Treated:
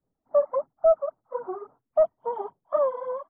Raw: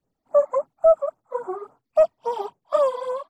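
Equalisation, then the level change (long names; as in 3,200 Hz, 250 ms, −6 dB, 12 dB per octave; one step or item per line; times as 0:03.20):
Savitzky-Golay smoothing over 41 samples
high-frequency loss of the air 340 metres
−2.5 dB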